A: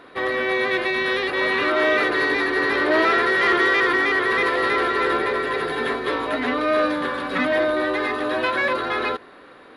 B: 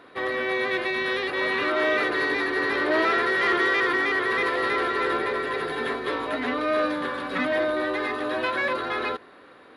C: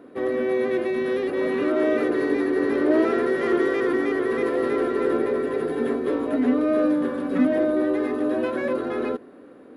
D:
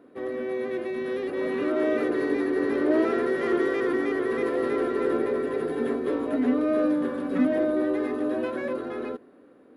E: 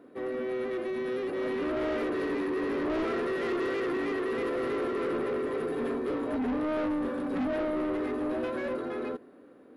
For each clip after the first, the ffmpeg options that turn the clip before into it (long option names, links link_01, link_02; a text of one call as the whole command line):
ffmpeg -i in.wav -af "highpass=44,volume=-4dB" out.wav
ffmpeg -i in.wav -af "equalizer=frequency=250:width_type=o:width=1:gain=11,equalizer=frequency=500:width_type=o:width=1:gain=4,equalizer=frequency=1000:width_type=o:width=1:gain=-6,equalizer=frequency=2000:width_type=o:width=1:gain=-6,equalizer=frequency=4000:width_type=o:width=1:gain=-12" out.wav
ffmpeg -i in.wav -af "dynaudnorm=framelen=200:gausssize=13:maxgain=4.5dB,volume=-7dB" out.wav
ffmpeg -i in.wav -af "asoftclip=type=tanh:threshold=-27dB" out.wav